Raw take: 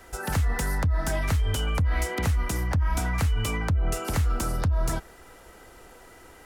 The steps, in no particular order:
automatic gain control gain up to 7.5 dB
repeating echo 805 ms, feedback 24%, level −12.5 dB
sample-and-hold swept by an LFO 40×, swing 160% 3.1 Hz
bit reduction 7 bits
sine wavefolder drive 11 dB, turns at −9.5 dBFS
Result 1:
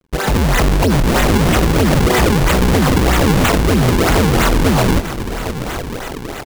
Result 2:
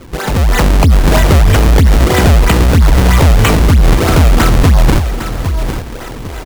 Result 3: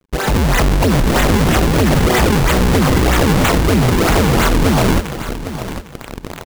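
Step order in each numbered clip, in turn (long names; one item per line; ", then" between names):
automatic gain control, then bit reduction, then sine wavefolder, then repeating echo, then sample-and-hold swept by an LFO
sample-and-hold swept by an LFO, then repeating echo, then sine wavefolder, then automatic gain control, then bit reduction
bit reduction, then automatic gain control, then sine wavefolder, then sample-and-hold swept by an LFO, then repeating echo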